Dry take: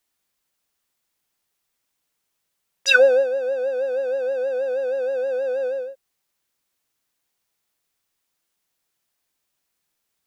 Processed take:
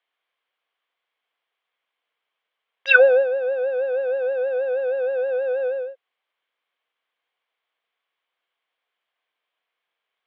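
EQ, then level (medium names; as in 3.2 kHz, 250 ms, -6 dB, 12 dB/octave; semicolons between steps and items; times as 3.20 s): cabinet simulation 420–3400 Hz, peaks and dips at 480 Hz +7 dB, 700 Hz +6 dB, 1.1 kHz +8 dB, 1.6 kHz +5 dB, 2.2 kHz +7 dB, 3.2 kHz +9 dB; -4.0 dB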